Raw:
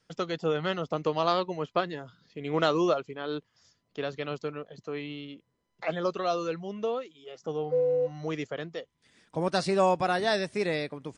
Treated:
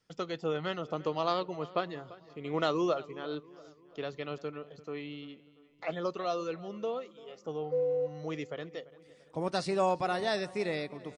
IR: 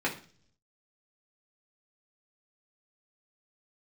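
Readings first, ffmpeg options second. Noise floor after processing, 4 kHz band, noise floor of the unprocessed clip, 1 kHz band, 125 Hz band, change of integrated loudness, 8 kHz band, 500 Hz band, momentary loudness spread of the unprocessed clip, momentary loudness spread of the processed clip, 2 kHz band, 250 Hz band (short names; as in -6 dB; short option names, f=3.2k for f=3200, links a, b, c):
-61 dBFS, -4.5 dB, -76 dBFS, -4.5 dB, -5.0 dB, -4.5 dB, n/a, -4.5 dB, 15 LU, 15 LU, -5.5 dB, -4.5 dB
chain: -filter_complex "[0:a]bandreject=f=1.6k:w=14,asplit=2[a][b];[b]adelay=342,lowpass=f=3.6k:p=1,volume=-19dB,asplit=2[c][d];[d]adelay=342,lowpass=f=3.6k:p=1,volume=0.51,asplit=2[e][f];[f]adelay=342,lowpass=f=3.6k:p=1,volume=0.51,asplit=2[g][h];[h]adelay=342,lowpass=f=3.6k:p=1,volume=0.51[i];[a][c][e][g][i]amix=inputs=5:normalize=0,asplit=2[j][k];[1:a]atrim=start_sample=2205[l];[k][l]afir=irnorm=-1:irlink=0,volume=-27dB[m];[j][m]amix=inputs=2:normalize=0,volume=-5dB"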